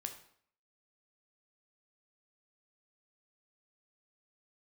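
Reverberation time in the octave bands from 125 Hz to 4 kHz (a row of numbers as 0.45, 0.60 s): 0.60, 0.60, 0.60, 0.60, 0.55, 0.50 s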